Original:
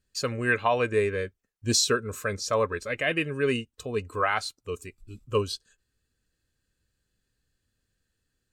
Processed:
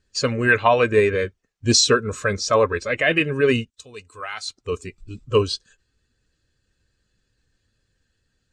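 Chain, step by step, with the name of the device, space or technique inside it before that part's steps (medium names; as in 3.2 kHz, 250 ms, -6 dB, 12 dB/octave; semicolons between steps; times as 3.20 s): clip after many re-uploads (low-pass 7.5 kHz 24 dB/octave; coarse spectral quantiser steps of 15 dB); 3.70–4.48 s: pre-emphasis filter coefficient 0.9; trim +8 dB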